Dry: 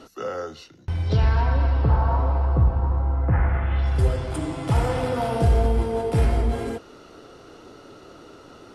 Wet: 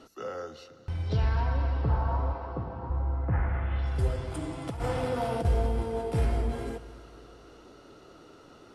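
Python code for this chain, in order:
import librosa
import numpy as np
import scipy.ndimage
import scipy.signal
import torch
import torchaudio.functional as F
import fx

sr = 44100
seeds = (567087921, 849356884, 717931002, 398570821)

y = fx.highpass(x, sr, hz=fx.line((2.32, 280.0), (2.89, 120.0)), slope=12, at=(2.32, 2.89), fade=0.02)
y = fx.over_compress(y, sr, threshold_db=-22.0, ratio=-0.5, at=(4.67, 5.45))
y = fx.echo_heads(y, sr, ms=91, heads='all three', feedback_pct=62, wet_db=-22)
y = y * 10.0 ** (-7.0 / 20.0)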